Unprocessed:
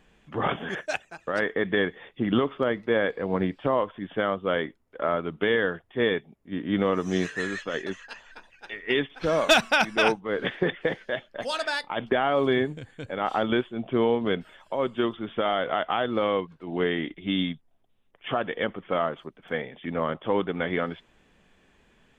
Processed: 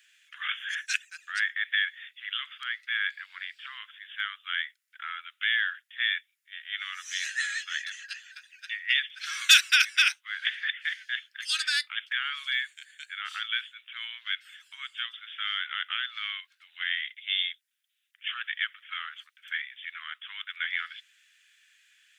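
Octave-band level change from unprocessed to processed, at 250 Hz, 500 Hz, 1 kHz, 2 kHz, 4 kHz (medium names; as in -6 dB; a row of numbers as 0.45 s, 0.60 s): under -40 dB, under -40 dB, -13.0 dB, +2.0 dB, +5.5 dB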